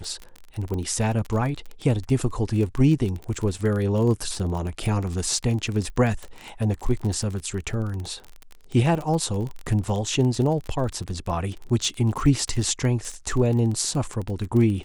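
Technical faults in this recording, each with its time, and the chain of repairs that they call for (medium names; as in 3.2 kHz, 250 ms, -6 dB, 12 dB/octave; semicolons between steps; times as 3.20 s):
crackle 29 per s -28 dBFS
0.74 s: pop -19 dBFS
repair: de-click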